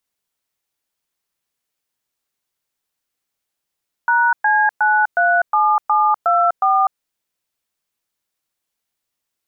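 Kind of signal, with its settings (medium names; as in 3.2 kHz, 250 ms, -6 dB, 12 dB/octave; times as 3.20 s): DTMF "#C937724", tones 249 ms, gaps 114 ms, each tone -14.5 dBFS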